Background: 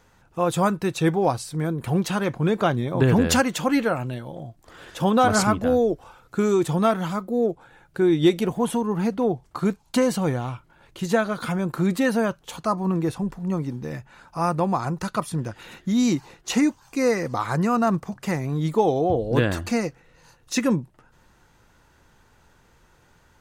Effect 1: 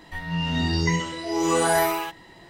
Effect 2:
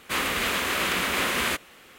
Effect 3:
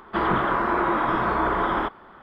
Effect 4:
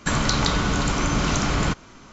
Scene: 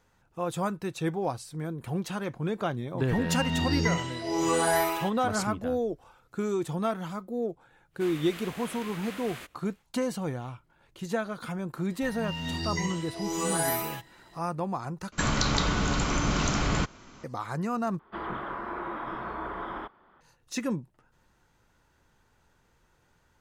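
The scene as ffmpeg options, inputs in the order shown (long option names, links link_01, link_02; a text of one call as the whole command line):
ffmpeg -i bed.wav -i cue0.wav -i cue1.wav -i cue2.wav -i cue3.wav -filter_complex "[1:a]asplit=2[link_01][link_02];[0:a]volume=-9dB[link_03];[link_02]crystalizer=i=1.5:c=0[link_04];[link_03]asplit=3[link_05][link_06][link_07];[link_05]atrim=end=15.124[link_08];[4:a]atrim=end=2.12,asetpts=PTS-STARTPTS,volume=-4.5dB[link_09];[link_06]atrim=start=17.236:end=17.994[link_10];[3:a]atrim=end=2.22,asetpts=PTS-STARTPTS,volume=-13dB[link_11];[link_07]atrim=start=20.206[link_12];[link_01]atrim=end=2.49,asetpts=PTS-STARTPTS,volume=-4dB,afade=type=in:duration=0.004:curve=hsin,afade=type=out:start_time=2.486:duration=0.004:curve=hsin,adelay=2980[link_13];[2:a]atrim=end=1.98,asetpts=PTS-STARTPTS,volume=-17.5dB,afade=type=in:duration=0.1,afade=type=out:start_time=1.88:duration=0.1,adelay=7900[link_14];[link_04]atrim=end=2.49,asetpts=PTS-STARTPTS,volume=-9.5dB,afade=type=in:duration=0.004:curve=hsin,afade=type=out:start_time=2.486:duration=0.004:curve=hsin,adelay=11900[link_15];[link_08][link_09]acrossfade=duration=0.004:curve1=hsin:curve2=hsin[link_16];[link_16][link_10]acrossfade=duration=0.004:curve1=hsin:curve2=hsin[link_17];[link_17][link_11]acrossfade=duration=0.004:curve1=hsin:curve2=hsin[link_18];[link_18][link_12]acrossfade=duration=0.004:curve1=hsin:curve2=hsin[link_19];[link_19][link_13][link_14][link_15]amix=inputs=4:normalize=0" out.wav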